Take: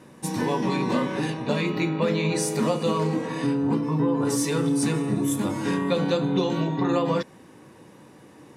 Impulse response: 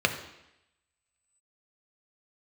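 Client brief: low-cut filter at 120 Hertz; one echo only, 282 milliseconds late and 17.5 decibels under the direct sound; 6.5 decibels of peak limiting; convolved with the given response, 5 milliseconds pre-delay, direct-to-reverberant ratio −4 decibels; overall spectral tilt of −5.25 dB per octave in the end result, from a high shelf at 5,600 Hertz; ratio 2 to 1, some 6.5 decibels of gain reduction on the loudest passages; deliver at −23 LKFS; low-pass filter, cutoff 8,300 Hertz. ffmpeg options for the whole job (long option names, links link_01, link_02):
-filter_complex "[0:a]highpass=120,lowpass=8300,highshelf=frequency=5600:gain=8.5,acompressor=threshold=-31dB:ratio=2,alimiter=limit=-22dB:level=0:latency=1,aecho=1:1:282:0.133,asplit=2[link_01][link_02];[1:a]atrim=start_sample=2205,adelay=5[link_03];[link_02][link_03]afir=irnorm=-1:irlink=0,volume=-9.5dB[link_04];[link_01][link_04]amix=inputs=2:normalize=0,volume=4.5dB"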